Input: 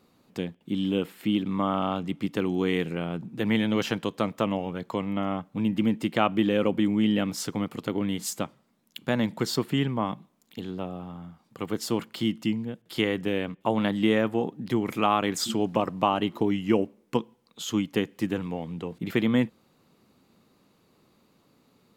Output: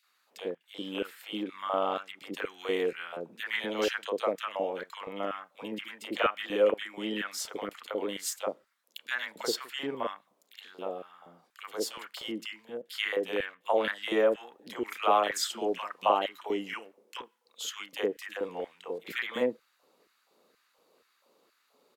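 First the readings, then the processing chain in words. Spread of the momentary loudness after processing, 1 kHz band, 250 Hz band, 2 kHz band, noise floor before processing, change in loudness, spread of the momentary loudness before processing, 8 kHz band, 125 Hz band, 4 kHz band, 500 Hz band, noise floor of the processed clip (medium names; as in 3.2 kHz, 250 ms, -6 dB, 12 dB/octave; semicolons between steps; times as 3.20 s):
14 LU, -2.0 dB, -14.0 dB, -0.5 dB, -65 dBFS, -5.0 dB, 11 LU, -2.0 dB, under -20 dB, -2.0 dB, -1.5 dB, -72 dBFS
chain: LFO high-pass square 2.1 Hz 510–1600 Hz; three bands offset in time highs, mids, lows 30/70 ms, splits 620/2200 Hz; trim -2 dB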